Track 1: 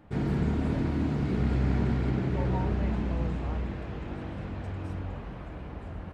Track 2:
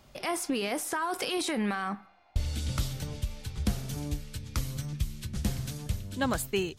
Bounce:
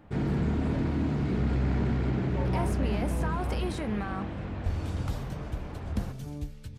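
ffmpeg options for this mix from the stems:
ffmpeg -i stem1.wav -i stem2.wav -filter_complex "[0:a]asoftclip=type=tanh:threshold=-19.5dB,volume=1dB[link_01];[1:a]highshelf=frequency=2100:gain=-10.5,adelay=2300,volume=-2.5dB[link_02];[link_01][link_02]amix=inputs=2:normalize=0" out.wav

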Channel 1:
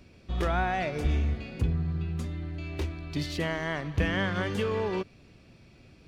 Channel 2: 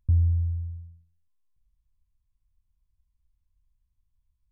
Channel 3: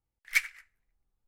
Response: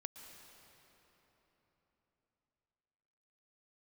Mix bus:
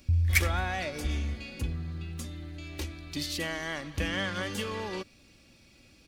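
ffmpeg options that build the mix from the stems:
-filter_complex "[0:a]highshelf=frequency=2500:gain=7.5,aecho=1:1:3.6:0.4,volume=-5.5dB[link_01];[1:a]volume=-4dB[link_02];[2:a]volume=-1.5dB[link_03];[link_01][link_02][link_03]amix=inputs=3:normalize=0,highshelf=frequency=5200:gain=9"

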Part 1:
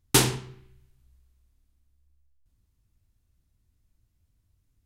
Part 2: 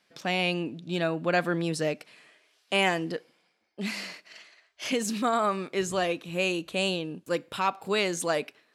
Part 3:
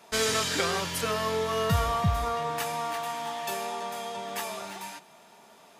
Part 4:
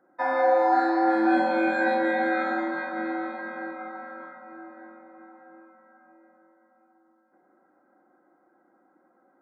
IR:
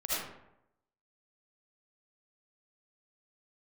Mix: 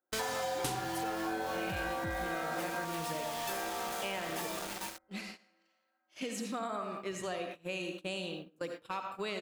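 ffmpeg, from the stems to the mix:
-filter_complex "[0:a]adelay=500,volume=-2.5dB[link_01];[1:a]adelay=1300,volume=-10.5dB,asplit=2[link_02][link_03];[link_03]volume=-8dB[link_04];[2:a]acrusher=bits=5:mix=0:aa=0.000001,asoftclip=type=hard:threshold=-27dB,volume=-1.5dB[link_05];[3:a]aemphasis=mode=production:type=bsi,volume=-3dB,asplit=3[link_06][link_07][link_08];[link_06]atrim=end=2.85,asetpts=PTS-STARTPTS,afade=type=out:start_time=2.846:duration=0.004:curve=hsin[link_09];[link_07]atrim=start=2.85:end=3.49,asetpts=PTS-STARTPTS,volume=0[link_10];[link_08]atrim=start=3.49,asetpts=PTS-STARTPTS,afade=type=in:duration=0.004:curve=hsin[link_11];[link_09][link_10][link_11]concat=n=3:v=0:a=1[link_12];[4:a]atrim=start_sample=2205[link_13];[link_04][link_13]afir=irnorm=-1:irlink=0[link_14];[link_01][link_02][link_05][link_12][link_14]amix=inputs=5:normalize=0,agate=range=-21dB:threshold=-40dB:ratio=16:detection=peak,acompressor=threshold=-34dB:ratio=5"

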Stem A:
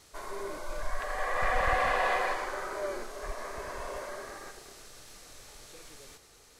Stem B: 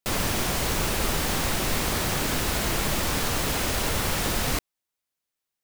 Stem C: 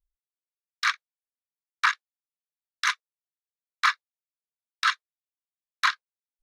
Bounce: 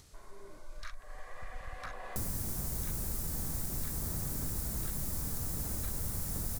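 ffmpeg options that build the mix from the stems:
ffmpeg -i stem1.wav -i stem2.wav -i stem3.wav -filter_complex "[0:a]acompressor=mode=upward:threshold=-37dB:ratio=2.5,volume=-17dB[link_01];[1:a]equalizer=frequency=2900:width_type=o:width=1.3:gain=-14.5,adelay=2100,volume=-4dB[link_02];[2:a]alimiter=limit=-17.5dB:level=0:latency=1:release=389,volume=-11.5dB[link_03];[link_01][link_02][link_03]amix=inputs=3:normalize=0,bass=frequency=250:gain=13,treble=frequency=4000:gain=3,acrossover=split=1700|7700[link_04][link_05][link_06];[link_04]acompressor=threshold=-38dB:ratio=4[link_07];[link_05]acompressor=threshold=-54dB:ratio=4[link_08];[link_06]acompressor=threshold=-38dB:ratio=4[link_09];[link_07][link_08][link_09]amix=inputs=3:normalize=0" out.wav

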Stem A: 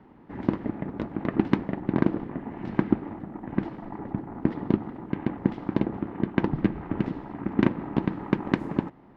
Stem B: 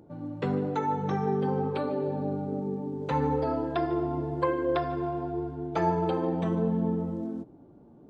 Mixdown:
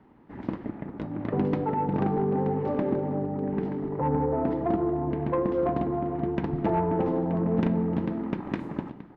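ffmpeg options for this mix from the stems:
ffmpeg -i stem1.wav -i stem2.wav -filter_complex "[0:a]bandreject=frequency=179.6:width_type=h:width=4,bandreject=frequency=359.2:width_type=h:width=4,bandreject=frequency=538.8:width_type=h:width=4,bandreject=frequency=718.4:width_type=h:width=4,bandreject=frequency=898:width_type=h:width=4,bandreject=frequency=1077.6:width_type=h:width=4,bandreject=frequency=1257.2:width_type=h:width=4,bandreject=frequency=1436.8:width_type=h:width=4,bandreject=frequency=1616.4:width_type=h:width=4,bandreject=frequency=1796:width_type=h:width=4,bandreject=frequency=1975.6:width_type=h:width=4,bandreject=frequency=2155.2:width_type=h:width=4,bandreject=frequency=2334.8:width_type=h:width=4,bandreject=frequency=2514.4:width_type=h:width=4,bandreject=frequency=2694:width_type=h:width=4,bandreject=frequency=2873.6:width_type=h:width=4,bandreject=frequency=3053.2:width_type=h:width=4,bandreject=frequency=3232.8:width_type=h:width=4,bandreject=frequency=3412.4:width_type=h:width=4,bandreject=frequency=3592:width_type=h:width=4,bandreject=frequency=3771.6:width_type=h:width=4,bandreject=frequency=3951.2:width_type=h:width=4,bandreject=frequency=4130.8:width_type=h:width=4,bandreject=frequency=4310.4:width_type=h:width=4,bandreject=frequency=4490:width_type=h:width=4,bandreject=frequency=4669.6:width_type=h:width=4,bandreject=frequency=4849.2:width_type=h:width=4,bandreject=frequency=5028.8:width_type=h:width=4,bandreject=frequency=5208.4:width_type=h:width=4,bandreject=frequency=5388:width_type=h:width=4,bandreject=frequency=5567.6:width_type=h:width=4,volume=-3.5dB,asplit=2[link_01][link_02];[link_02]volume=-13.5dB[link_03];[1:a]lowpass=frequency=1000:width=0.5412,lowpass=frequency=1000:width=1.3066,adelay=900,volume=2.5dB[link_04];[link_03]aecho=0:1:928|1856|2784|3712:1|0.3|0.09|0.027[link_05];[link_01][link_04][link_05]amix=inputs=3:normalize=0,asoftclip=type=tanh:threshold=-16.5dB" out.wav

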